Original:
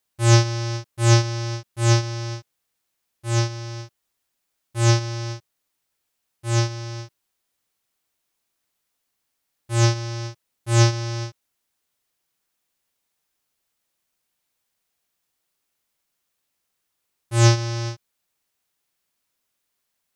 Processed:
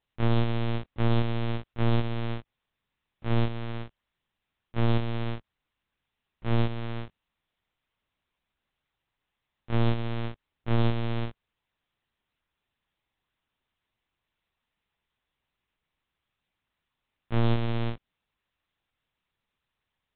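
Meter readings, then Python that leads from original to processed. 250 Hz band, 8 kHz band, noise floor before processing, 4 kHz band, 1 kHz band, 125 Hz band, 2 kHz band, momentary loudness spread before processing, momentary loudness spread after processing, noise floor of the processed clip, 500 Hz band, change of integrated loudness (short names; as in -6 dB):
-1.5 dB, under -40 dB, -77 dBFS, -12.0 dB, -7.0 dB, -8.5 dB, -9.0 dB, 18 LU, 13 LU, -85 dBFS, -6.0 dB, -8.5 dB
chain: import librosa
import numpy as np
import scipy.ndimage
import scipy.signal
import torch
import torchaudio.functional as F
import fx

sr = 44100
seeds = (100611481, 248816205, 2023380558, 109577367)

y = fx.dynamic_eq(x, sr, hz=1500.0, q=1.1, threshold_db=-37.0, ratio=4.0, max_db=-4)
y = np.clip(10.0 ** (20.5 / 20.0) * y, -1.0, 1.0) / 10.0 ** (20.5 / 20.0)
y = fx.lpc_vocoder(y, sr, seeds[0], excitation='pitch_kept', order=8)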